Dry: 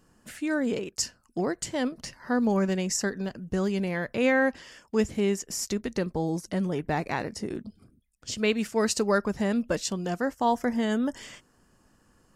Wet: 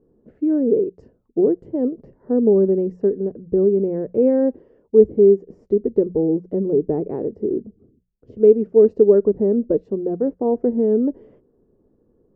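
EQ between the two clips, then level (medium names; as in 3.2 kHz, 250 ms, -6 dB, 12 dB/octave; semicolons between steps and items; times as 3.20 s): dynamic bell 320 Hz, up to +5 dB, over -36 dBFS, Q 1.1; resonant low-pass 430 Hz, resonance Q 4.3; hum notches 60/120/180 Hz; 0.0 dB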